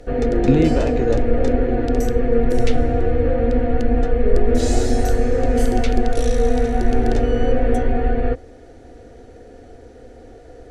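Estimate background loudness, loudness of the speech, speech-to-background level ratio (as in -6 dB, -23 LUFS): -20.0 LUFS, -22.0 LUFS, -2.0 dB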